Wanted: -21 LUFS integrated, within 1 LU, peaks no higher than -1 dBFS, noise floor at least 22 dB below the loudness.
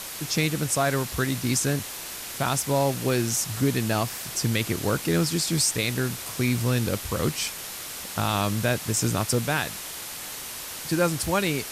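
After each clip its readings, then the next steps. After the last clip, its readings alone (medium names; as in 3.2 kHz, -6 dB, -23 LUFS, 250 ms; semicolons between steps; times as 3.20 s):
noise floor -37 dBFS; noise floor target -48 dBFS; loudness -25.5 LUFS; peak level -11.0 dBFS; loudness target -21.0 LUFS
-> noise reduction 11 dB, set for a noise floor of -37 dBFS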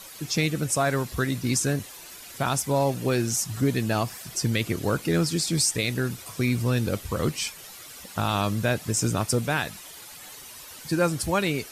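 noise floor -44 dBFS; noise floor target -48 dBFS
-> noise reduction 6 dB, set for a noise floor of -44 dBFS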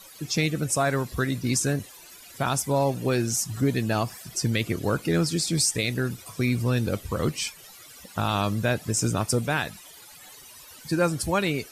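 noise floor -48 dBFS; loudness -26.0 LUFS; peak level -11.5 dBFS; loudness target -21.0 LUFS
-> trim +5 dB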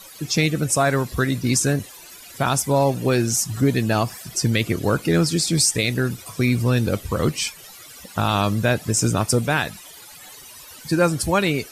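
loudness -21.0 LUFS; peak level -6.5 dBFS; noise floor -43 dBFS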